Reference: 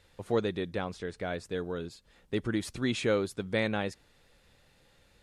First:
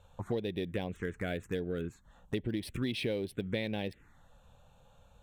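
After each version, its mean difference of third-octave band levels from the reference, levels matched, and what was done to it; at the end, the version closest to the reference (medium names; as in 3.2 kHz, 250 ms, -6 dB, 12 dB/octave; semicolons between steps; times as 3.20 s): 5.0 dB: local Wiener filter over 9 samples; touch-sensitive phaser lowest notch 330 Hz, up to 1.3 kHz, full sweep at -29 dBFS; treble shelf 4.7 kHz +7.5 dB; compression 6:1, threshold -37 dBFS, peak gain reduction 12.5 dB; trim +6 dB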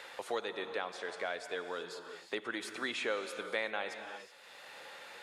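10.5 dB: high-pass 700 Hz 12 dB/octave; treble shelf 4.2 kHz -6.5 dB; gated-style reverb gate 400 ms flat, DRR 9.5 dB; three bands compressed up and down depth 70%; trim +1 dB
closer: first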